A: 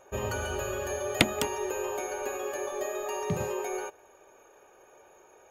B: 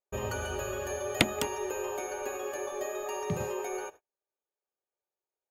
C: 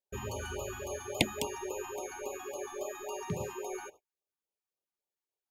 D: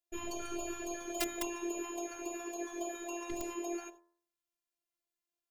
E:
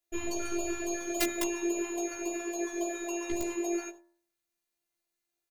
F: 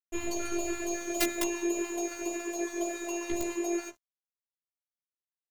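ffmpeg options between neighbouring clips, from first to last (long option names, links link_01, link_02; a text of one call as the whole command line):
ffmpeg -i in.wav -af "agate=range=-39dB:threshold=-46dB:ratio=16:detection=peak,volume=-2dB" out.wav
ffmpeg -i in.wav -af "afftfilt=real='re*(1-between(b*sr/1024,460*pow(1800/460,0.5+0.5*sin(2*PI*3.6*pts/sr))/1.41,460*pow(1800/460,0.5+0.5*sin(2*PI*3.6*pts/sr))*1.41))':imag='im*(1-between(b*sr/1024,460*pow(1800/460,0.5+0.5*sin(2*PI*3.6*pts/sr))/1.41,460*pow(1800/460,0.5+0.5*sin(2*PI*3.6*pts/sr))*1.41))':win_size=1024:overlap=0.75,volume=-3dB" out.wav
ffmpeg -i in.wav -af "bandreject=frequency=84.46:width_type=h:width=4,bandreject=frequency=168.92:width_type=h:width=4,bandreject=frequency=253.38:width_type=h:width=4,bandreject=frequency=337.84:width_type=h:width=4,bandreject=frequency=422.3:width_type=h:width=4,bandreject=frequency=506.76:width_type=h:width=4,bandreject=frequency=591.22:width_type=h:width=4,bandreject=frequency=675.68:width_type=h:width=4,bandreject=frequency=760.14:width_type=h:width=4,bandreject=frequency=844.6:width_type=h:width=4,bandreject=frequency=929.06:width_type=h:width=4,bandreject=frequency=1013.52:width_type=h:width=4,bandreject=frequency=1097.98:width_type=h:width=4,bandreject=frequency=1182.44:width_type=h:width=4,bandreject=frequency=1266.9:width_type=h:width=4,bandreject=frequency=1351.36:width_type=h:width=4,bandreject=frequency=1435.82:width_type=h:width=4,bandreject=frequency=1520.28:width_type=h:width=4,bandreject=frequency=1604.74:width_type=h:width=4,bandreject=frequency=1689.2:width_type=h:width=4,bandreject=frequency=1773.66:width_type=h:width=4,bandreject=frequency=1858.12:width_type=h:width=4,bandreject=frequency=1942.58:width_type=h:width=4,bandreject=frequency=2027.04:width_type=h:width=4,aeval=exprs='(mod(17.8*val(0)+1,2)-1)/17.8':channel_layout=same,afftfilt=real='hypot(re,im)*cos(PI*b)':imag='0':win_size=512:overlap=0.75,volume=3.5dB" out.wav
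ffmpeg -i in.wav -filter_complex "[0:a]asplit=2[link_01][link_02];[link_02]adelay=15,volume=-3dB[link_03];[link_01][link_03]amix=inputs=2:normalize=0,volume=4dB" out.wav
ffmpeg -i in.wav -af "aeval=exprs='sgn(val(0))*max(abs(val(0))-0.00335,0)':channel_layout=same,volume=1.5dB" out.wav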